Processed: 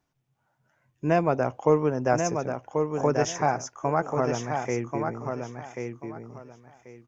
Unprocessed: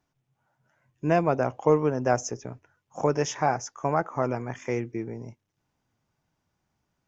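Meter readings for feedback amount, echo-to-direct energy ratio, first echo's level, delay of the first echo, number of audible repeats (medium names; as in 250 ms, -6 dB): 21%, -5.5 dB, -5.5 dB, 1087 ms, 3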